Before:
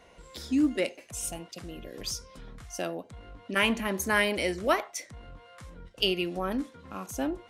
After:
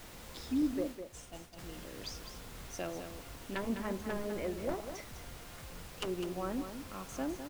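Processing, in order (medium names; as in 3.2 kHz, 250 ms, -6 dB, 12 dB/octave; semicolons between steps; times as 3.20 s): integer overflow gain 16.5 dB; low-pass that closes with the level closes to 630 Hz, closed at -23 dBFS; added noise pink -44 dBFS; 0.62–1.59 s: expander -33 dBFS; delay 204 ms -8.5 dB; trim -6.5 dB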